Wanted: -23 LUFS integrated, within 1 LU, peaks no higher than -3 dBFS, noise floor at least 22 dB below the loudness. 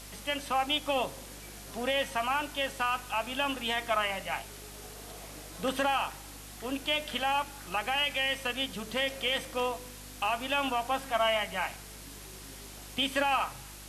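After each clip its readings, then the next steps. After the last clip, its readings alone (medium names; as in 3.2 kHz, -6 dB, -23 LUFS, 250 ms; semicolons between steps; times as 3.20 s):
hum 50 Hz; highest harmonic 350 Hz; hum level -48 dBFS; noise floor -47 dBFS; noise floor target -53 dBFS; loudness -31.0 LUFS; peak level -16.0 dBFS; loudness target -23.0 LUFS
-> de-hum 50 Hz, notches 7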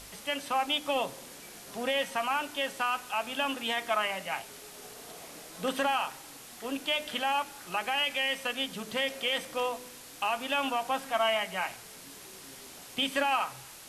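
hum not found; noise floor -49 dBFS; noise floor target -53 dBFS
-> noise reduction 6 dB, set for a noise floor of -49 dBFS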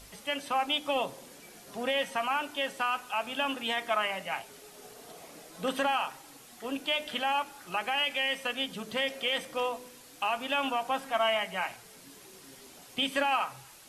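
noise floor -53 dBFS; loudness -31.0 LUFS; peak level -16.0 dBFS; loudness target -23.0 LUFS
-> trim +8 dB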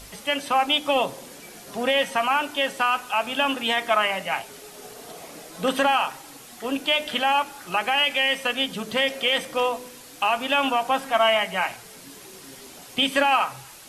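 loudness -23.0 LUFS; peak level -8.0 dBFS; noise floor -45 dBFS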